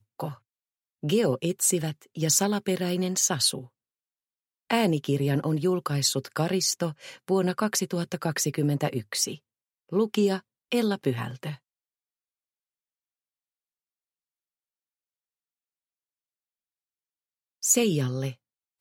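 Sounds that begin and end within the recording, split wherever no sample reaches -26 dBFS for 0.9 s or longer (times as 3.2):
4.7–11.5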